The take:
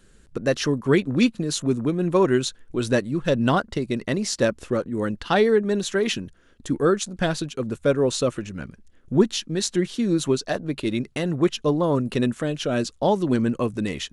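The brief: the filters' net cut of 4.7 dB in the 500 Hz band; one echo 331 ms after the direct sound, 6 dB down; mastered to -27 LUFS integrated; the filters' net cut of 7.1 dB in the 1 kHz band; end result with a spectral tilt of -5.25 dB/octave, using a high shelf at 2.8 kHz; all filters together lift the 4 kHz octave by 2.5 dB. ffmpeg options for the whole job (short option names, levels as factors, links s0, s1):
-af "equalizer=f=500:t=o:g=-4.5,equalizer=f=1000:t=o:g=-7.5,highshelf=f=2800:g=-7,equalizer=f=4000:t=o:g=9,aecho=1:1:331:0.501,volume=0.794"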